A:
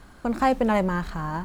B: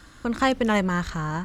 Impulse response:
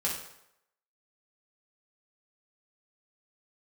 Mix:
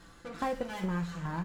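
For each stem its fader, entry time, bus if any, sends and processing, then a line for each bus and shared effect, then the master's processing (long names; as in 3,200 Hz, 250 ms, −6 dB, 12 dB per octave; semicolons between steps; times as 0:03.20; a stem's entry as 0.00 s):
−5.0 dB, 0.00 s, no send, gate pattern "xx..xx.." 144 BPM
−6.0 dB, 0.00 s, send −5 dB, comb filter 5.9 ms, depth 94%; tube saturation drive 30 dB, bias 0.65; automatic ducking −9 dB, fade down 0.30 s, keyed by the first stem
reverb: on, RT60 0.80 s, pre-delay 3 ms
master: flanger 1.6 Hz, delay 8.9 ms, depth 2 ms, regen −65%; downward compressor, threshold −28 dBFS, peak gain reduction 4 dB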